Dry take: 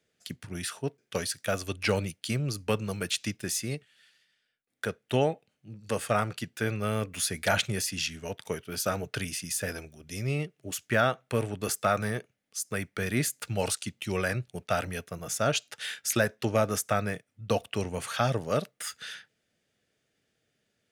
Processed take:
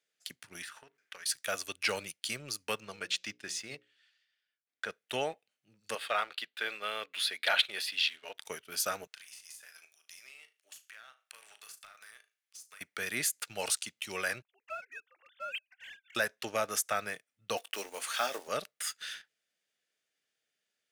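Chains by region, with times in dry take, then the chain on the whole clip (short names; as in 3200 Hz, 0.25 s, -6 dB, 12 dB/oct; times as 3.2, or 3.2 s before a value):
0.62–1.26 bell 1600 Hz +13.5 dB 1.7 oct + compressor 20:1, threshold -39 dBFS + notches 50/100/150/200/250/300/350/400 Hz
2.8–4.9 air absorption 93 m + notches 60/120/180/240/300/360/420/480/540 Hz
5.95–8.35 HPF 400 Hz + resonant high shelf 5000 Hz -9 dB, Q 3 + mismatched tape noise reduction decoder only
9.07–12.81 HPF 1200 Hz + compressor 8:1, threshold -46 dBFS + flutter echo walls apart 6.4 m, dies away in 0.27 s
14.42–16.15 sine-wave speech + band-pass 2600 Hz, Q 1.1 + air absorption 330 m
17.57–18.48 block floating point 5-bit + HPF 250 Hz 24 dB/oct + doubler 20 ms -11.5 dB
whole clip: HPF 1400 Hz 6 dB/oct; sample leveller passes 1; gain -3 dB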